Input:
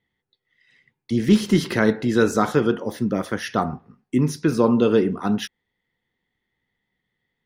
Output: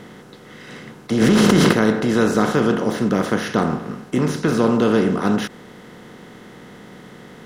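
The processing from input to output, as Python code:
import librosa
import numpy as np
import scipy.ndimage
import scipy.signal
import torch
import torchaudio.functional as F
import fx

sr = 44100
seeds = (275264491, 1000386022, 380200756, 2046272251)

y = fx.bin_compress(x, sr, power=0.4)
y = fx.env_flatten(y, sr, amount_pct=100, at=(1.2, 1.71), fade=0.02)
y = y * 10.0 ** (-4.0 / 20.0)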